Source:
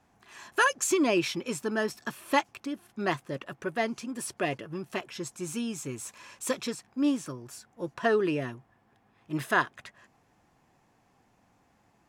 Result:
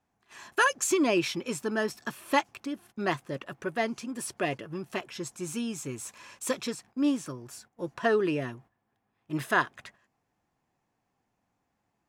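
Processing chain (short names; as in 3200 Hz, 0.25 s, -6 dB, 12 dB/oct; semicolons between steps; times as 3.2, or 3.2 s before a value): gate -53 dBFS, range -12 dB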